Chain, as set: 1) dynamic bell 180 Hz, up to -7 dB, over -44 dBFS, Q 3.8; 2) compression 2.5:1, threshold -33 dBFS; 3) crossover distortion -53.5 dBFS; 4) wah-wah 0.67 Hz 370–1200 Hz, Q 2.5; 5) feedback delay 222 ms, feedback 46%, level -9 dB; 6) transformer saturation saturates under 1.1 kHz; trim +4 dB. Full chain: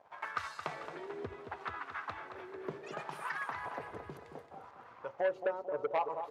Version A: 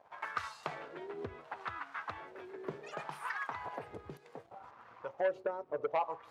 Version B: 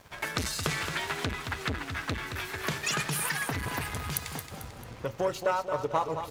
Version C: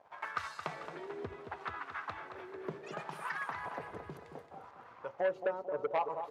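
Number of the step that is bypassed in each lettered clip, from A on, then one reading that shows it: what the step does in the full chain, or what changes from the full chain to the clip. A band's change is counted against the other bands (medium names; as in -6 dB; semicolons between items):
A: 5, momentary loudness spread change +1 LU; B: 4, 8 kHz band +16.0 dB; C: 1, 125 Hz band +1.5 dB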